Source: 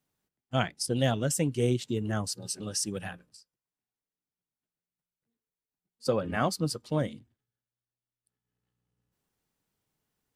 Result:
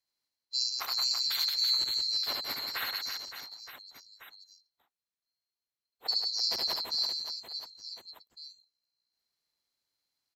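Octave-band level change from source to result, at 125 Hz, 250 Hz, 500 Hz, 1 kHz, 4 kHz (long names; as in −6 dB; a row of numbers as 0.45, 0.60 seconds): below −30 dB, −26.0 dB, −20.0 dB, −7.0 dB, +12.0 dB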